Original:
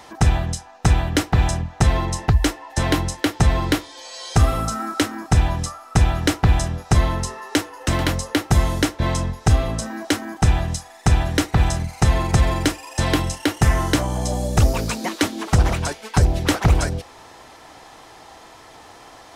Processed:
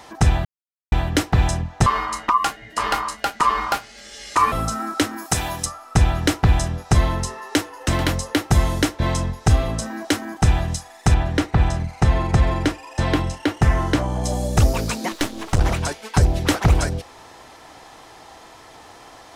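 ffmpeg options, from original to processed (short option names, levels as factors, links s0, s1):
-filter_complex "[0:a]asettb=1/sr,asplit=3[s0][s1][s2];[s0]atrim=end=1.864[s3];[s1]atrim=start=1.86:end=4.52,asetpts=PTS-STARTPTS,afade=t=in:d=0.004:c=qsin,afade=t=out:st=2.656:d=0.004:c=qsin,aeval=exprs='val(0)*sin(2*PI*1100*n/s)':c=same[s4];[s2]atrim=start=4.516[s5];[s3][s4]acrossfade=d=0.004:c1=hsin:c2=qsin[s6];[s6][s5]acrossfade=d=0.004:c1=qsin:c2=hsin,asplit=3[s7][s8][s9];[s7]afade=t=out:st=5.16:d=0.02[s10];[s8]aemphasis=mode=production:type=bsi,afade=t=in:st=5.16:d=0.02,afade=t=out:st=5.64:d=0.02[s11];[s9]afade=t=in:st=5.64:d=0.02[s12];[s10][s11][s12]amix=inputs=3:normalize=0,asettb=1/sr,asplit=3[s13][s14][s15];[s13]atrim=end=11.144[s16];[s14]atrim=start=11.14:end=14.24,asetpts=PTS-STARTPTS,afade=t=in:d=0.004:c=qsin,afade=t=out:st=3.096:d=0.004:c=qsin,lowpass=f=2700:p=1[s17];[s15]atrim=start=14.236[s18];[s16][s17]acrossfade=d=0.004:c1=hsin:c2=qsin[s19];[s19][s18]acrossfade=d=0.004:c1=qsin:c2=hsin,asettb=1/sr,asplit=3[s20][s21][s22];[s20]atrim=end=15.124[s23];[s21]atrim=start=15.12:end=15.62,asetpts=PTS-STARTPTS,afade=t=in:d=0.004:c=qsin,afade=t=out:st=0.496:d=0.004:c=qsin,aeval=exprs='if(lt(val(0),0),0.251*val(0),val(0))':c=same[s24];[s22]atrim=start=15.616[s25];[s23][s24]acrossfade=d=0.004:c1=hsin:c2=qsin[s26];[s26][s25]acrossfade=d=0.004:c1=qsin:c2=hsin,asplit=3[s27][s28][s29];[s27]atrim=end=0.45,asetpts=PTS-STARTPTS,afade=t=out:st=0.446:d=0.004:c=hsin[s30];[s28]atrim=start=0.45:end=0.92,asetpts=PTS-STARTPTS,volume=0[s31];[s29]atrim=start=0.92,asetpts=PTS-STARTPTS,afade=t=in:d=0.004:c=hsin[s32];[s30][s31][s32]concat=n=3:v=0:a=1"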